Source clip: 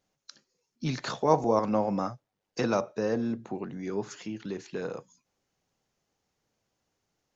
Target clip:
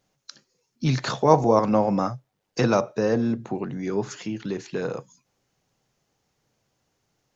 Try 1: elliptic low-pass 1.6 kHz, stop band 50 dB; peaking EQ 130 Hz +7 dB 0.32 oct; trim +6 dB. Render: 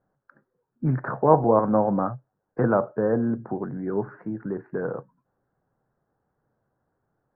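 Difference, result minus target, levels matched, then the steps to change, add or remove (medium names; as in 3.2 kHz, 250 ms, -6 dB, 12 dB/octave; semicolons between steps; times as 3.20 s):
2 kHz band -2.5 dB
remove: elliptic low-pass 1.6 kHz, stop band 50 dB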